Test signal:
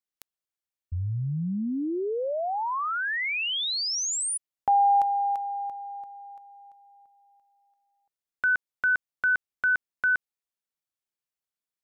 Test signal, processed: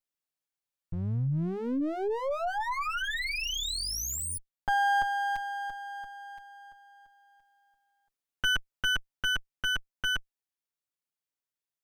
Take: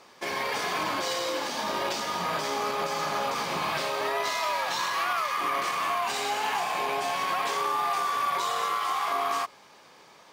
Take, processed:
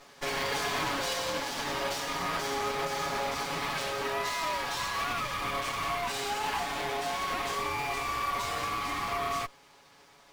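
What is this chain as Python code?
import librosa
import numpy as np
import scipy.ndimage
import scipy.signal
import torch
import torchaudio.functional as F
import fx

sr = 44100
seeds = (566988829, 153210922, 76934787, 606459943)

y = fx.lower_of_two(x, sr, delay_ms=7.1)
y = fx.rider(y, sr, range_db=5, speed_s=2.0)
y = y * librosa.db_to_amplitude(-2.0)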